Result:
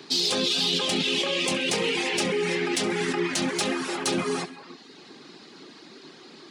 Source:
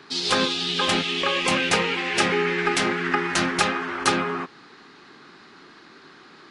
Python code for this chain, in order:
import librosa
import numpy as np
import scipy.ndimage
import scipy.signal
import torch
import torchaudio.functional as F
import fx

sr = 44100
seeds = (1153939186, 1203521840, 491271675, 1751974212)

p1 = scipy.signal.sosfilt(scipy.signal.butter(2, 100.0, 'highpass', fs=sr, output='sos'), x)
p2 = fx.low_shelf(p1, sr, hz=140.0, db=-11.0)
p3 = fx.rev_gated(p2, sr, seeds[0], gate_ms=370, shape='flat', drr_db=8.5)
p4 = fx.dereverb_blind(p3, sr, rt60_s=0.62)
p5 = fx.over_compress(p4, sr, threshold_db=-28.0, ratio=-0.5)
p6 = p4 + (p5 * 10.0 ** (1.0 / 20.0))
p7 = fx.peak_eq(p6, sr, hz=1400.0, db=-14.0, octaves=1.6)
p8 = p7 + fx.echo_feedback(p7, sr, ms=67, feedback_pct=42, wet_db=-17.0, dry=0)
y = 10.0 ** (-13.5 / 20.0) * np.tanh(p8 / 10.0 ** (-13.5 / 20.0))